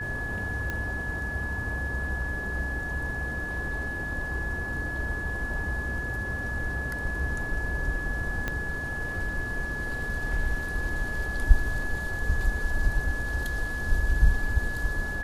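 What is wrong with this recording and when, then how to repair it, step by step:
tone 1700 Hz -32 dBFS
0.7 pop -18 dBFS
8.48 pop -15 dBFS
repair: de-click; notch 1700 Hz, Q 30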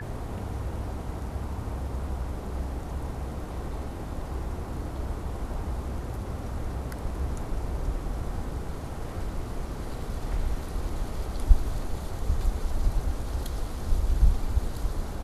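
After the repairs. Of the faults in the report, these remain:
8.48 pop

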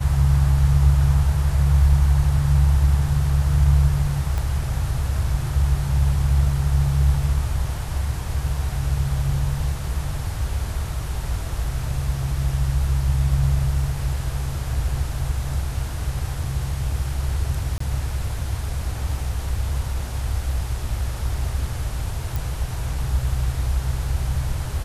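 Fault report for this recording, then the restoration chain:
4.38 pop -14 dBFS
17.78–17.8 gap 24 ms
22.36 pop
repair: de-click; interpolate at 17.78, 24 ms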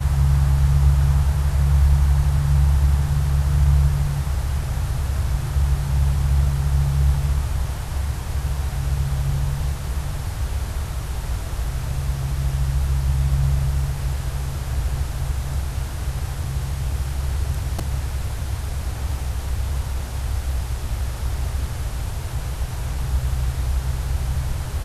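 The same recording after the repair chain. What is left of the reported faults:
4.38 pop
22.36 pop

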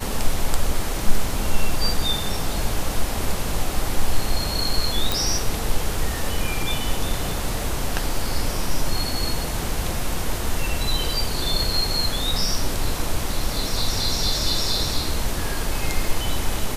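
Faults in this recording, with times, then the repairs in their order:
5.12 pop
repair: de-click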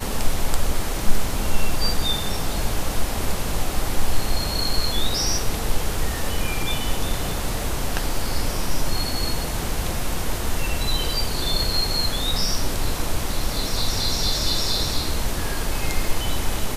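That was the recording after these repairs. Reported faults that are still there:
none

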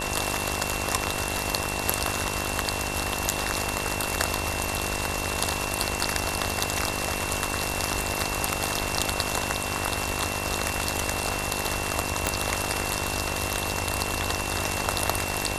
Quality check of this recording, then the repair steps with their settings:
buzz 50 Hz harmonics 22 -33 dBFS
tone 2700 Hz -34 dBFS
12.27 pop -6 dBFS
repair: de-click; notch 2700 Hz, Q 30; de-hum 50 Hz, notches 22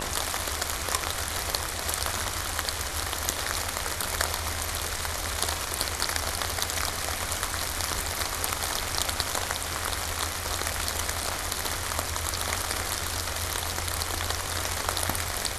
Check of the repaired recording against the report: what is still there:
12.27 pop

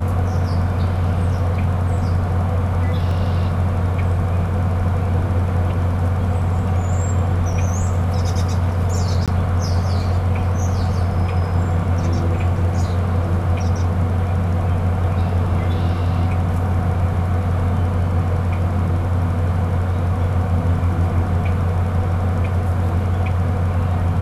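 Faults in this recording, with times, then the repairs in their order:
3.11 gap 2.4 ms
9.26–9.28 gap 17 ms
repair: interpolate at 3.11, 2.4 ms; interpolate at 9.26, 17 ms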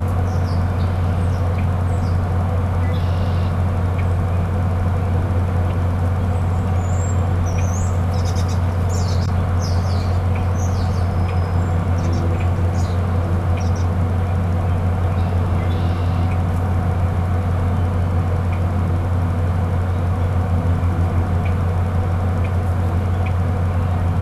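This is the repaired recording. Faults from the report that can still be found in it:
none

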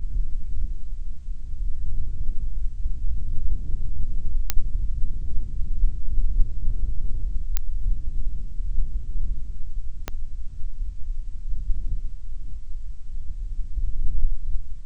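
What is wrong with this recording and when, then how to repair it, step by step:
4.5 pop -4 dBFS
7.57 pop -7 dBFS
10.08 pop -12 dBFS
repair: de-click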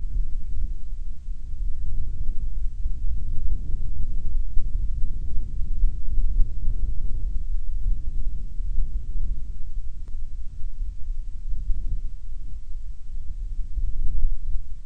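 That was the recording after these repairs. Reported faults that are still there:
10.08 pop

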